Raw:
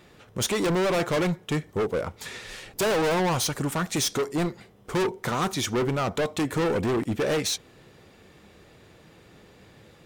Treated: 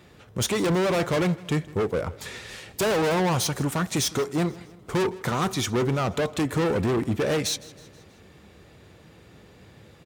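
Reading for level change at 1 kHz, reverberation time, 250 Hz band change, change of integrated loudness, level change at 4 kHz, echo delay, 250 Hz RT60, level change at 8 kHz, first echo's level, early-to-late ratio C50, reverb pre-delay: 0.0 dB, no reverb audible, +1.5 dB, +1.0 dB, 0.0 dB, 160 ms, no reverb audible, 0.0 dB, −20.5 dB, no reverb audible, no reverb audible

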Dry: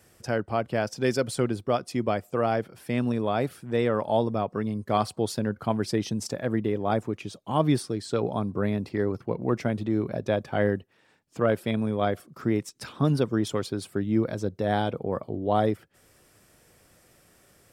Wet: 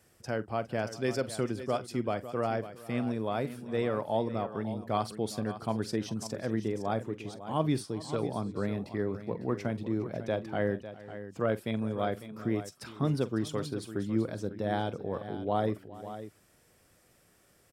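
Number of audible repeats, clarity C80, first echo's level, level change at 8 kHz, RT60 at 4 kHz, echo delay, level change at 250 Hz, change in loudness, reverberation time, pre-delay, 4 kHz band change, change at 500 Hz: 3, no reverb audible, −16.5 dB, −5.5 dB, no reverb audible, 45 ms, −5.5 dB, −5.5 dB, no reverb audible, no reverb audible, −5.5 dB, −5.5 dB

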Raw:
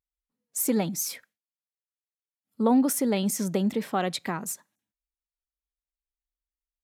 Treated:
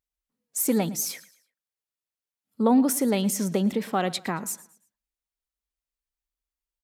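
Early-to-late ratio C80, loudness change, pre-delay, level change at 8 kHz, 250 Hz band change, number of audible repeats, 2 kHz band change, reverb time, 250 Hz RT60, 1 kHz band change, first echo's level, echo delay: no reverb audible, +1.5 dB, no reverb audible, +1.5 dB, +1.5 dB, 2, +1.5 dB, no reverb audible, no reverb audible, +1.5 dB, −19.5 dB, 113 ms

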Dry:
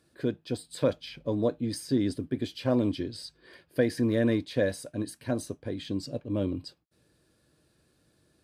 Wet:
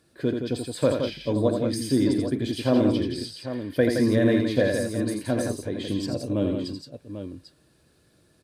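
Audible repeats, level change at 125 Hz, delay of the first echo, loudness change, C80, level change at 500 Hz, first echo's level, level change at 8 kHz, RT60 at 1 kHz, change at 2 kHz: 4, +5.0 dB, 47 ms, +5.5 dB, no reverb audible, +5.5 dB, −16.0 dB, +5.5 dB, no reverb audible, +6.0 dB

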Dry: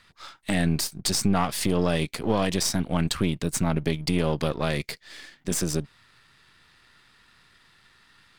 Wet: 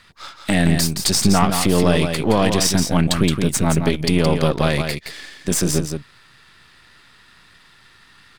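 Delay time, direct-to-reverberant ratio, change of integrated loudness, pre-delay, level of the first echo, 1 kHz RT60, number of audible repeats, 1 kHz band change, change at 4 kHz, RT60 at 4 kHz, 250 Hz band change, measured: 170 ms, no reverb audible, +8.0 dB, no reverb audible, −6.5 dB, no reverb audible, 1, +8.0 dB, +8.0 dB, no reverb audible, +8.0 dB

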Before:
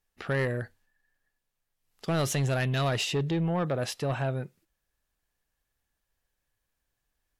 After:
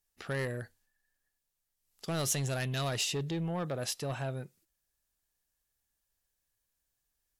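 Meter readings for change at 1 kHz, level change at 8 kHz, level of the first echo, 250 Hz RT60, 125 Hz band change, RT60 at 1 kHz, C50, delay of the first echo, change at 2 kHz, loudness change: −6.5 dB, +2.5 dB, no echo audible, no reverb audible, −6.5 dB, no reverb audible, no reverb audible, no echo audible, −6.0 dB, −5.0 dB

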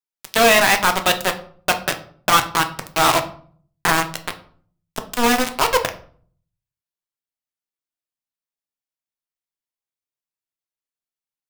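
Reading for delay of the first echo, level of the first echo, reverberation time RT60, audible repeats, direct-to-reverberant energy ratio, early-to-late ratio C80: no echo audible, no echo audible, 0.50 s, no echo audible, 6.0 dB, 17.5 dB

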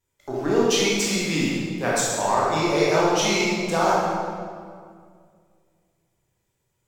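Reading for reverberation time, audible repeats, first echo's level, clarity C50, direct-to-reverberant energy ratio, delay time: 2.1 s, no echo audible, no echo audible, −2.5 dB, −7.0 dB, no echo audible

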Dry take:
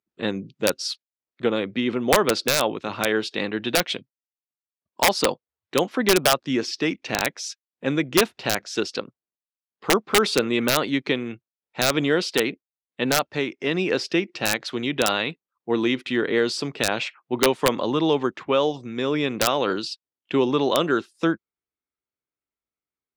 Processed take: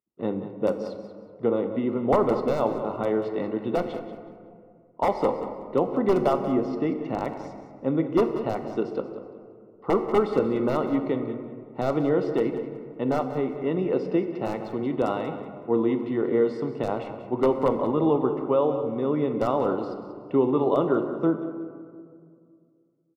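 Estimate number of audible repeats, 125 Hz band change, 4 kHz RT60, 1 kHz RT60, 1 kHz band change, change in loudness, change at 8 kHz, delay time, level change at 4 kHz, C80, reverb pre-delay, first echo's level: 2, 0.0 dB, 1.0 s, 2.0 s, −2.5 dB, −2.5 dB, below −25 dB, 186 ms, −22.0 dB, 8.0 dB, 7 ms, −12.5 dB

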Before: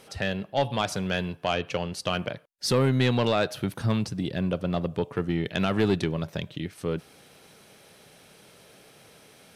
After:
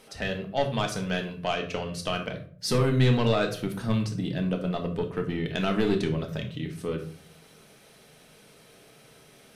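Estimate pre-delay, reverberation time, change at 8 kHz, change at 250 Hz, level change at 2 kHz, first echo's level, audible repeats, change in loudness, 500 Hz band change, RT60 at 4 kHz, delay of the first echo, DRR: 3 ms, 0.50 s, −1.0 dB, −0.5 dB, −1.0 dB, no echo audible, no echo audible, −0.5 dB, −0.5 dB, 0.30 s, no echo audible, 2.5 dB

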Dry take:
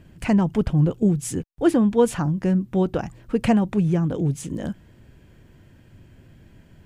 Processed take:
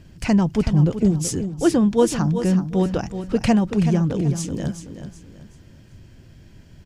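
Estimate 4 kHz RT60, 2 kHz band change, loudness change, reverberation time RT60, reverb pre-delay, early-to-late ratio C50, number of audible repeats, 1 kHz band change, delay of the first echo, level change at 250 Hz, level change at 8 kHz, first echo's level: no reverb audible, +1.5 dB, +1.5 dB, no reverb audible, no reverb audible, no reverb audible, 3, +0.5 dB, 378 ms, +1.5 dB, +5.5 dB, −10.0 dB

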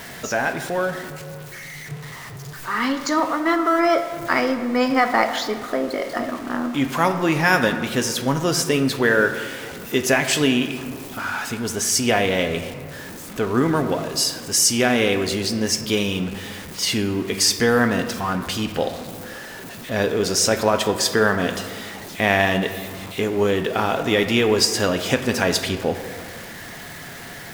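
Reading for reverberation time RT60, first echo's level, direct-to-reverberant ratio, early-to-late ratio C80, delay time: 2.0 s, no echo audible, 7.0 dB, 10.0 dB, no echo audible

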